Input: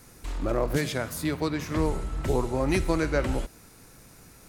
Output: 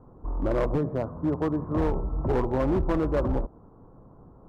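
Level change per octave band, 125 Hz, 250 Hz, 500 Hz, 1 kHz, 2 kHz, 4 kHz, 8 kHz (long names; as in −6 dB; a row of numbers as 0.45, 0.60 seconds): +1.0 dB, +1.5 dB, +1.0 dB, +0.5 dB, −8.5 dB, below −10 dB, below −20 dB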